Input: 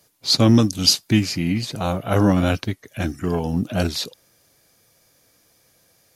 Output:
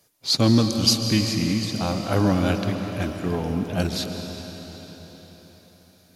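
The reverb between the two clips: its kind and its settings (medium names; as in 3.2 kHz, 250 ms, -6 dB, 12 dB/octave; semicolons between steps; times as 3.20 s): algorithmic reverb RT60 4.8 s, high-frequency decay 0.95×, pre-delay 95 ms, DRR 5 dB; trim -3.5 dB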